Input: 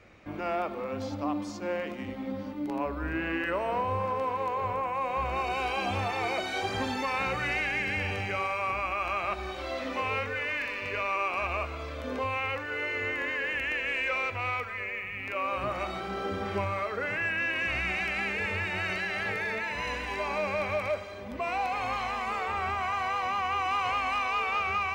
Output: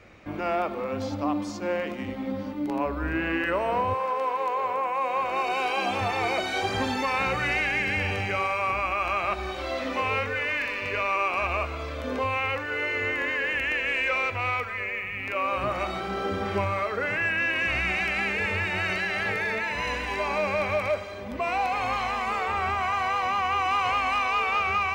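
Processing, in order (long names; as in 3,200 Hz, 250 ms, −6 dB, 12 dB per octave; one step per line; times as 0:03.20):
0:03.93–0:06.00: high-pass filter 480 Hz → 200 Hz 12 dB per octave
level +4 dB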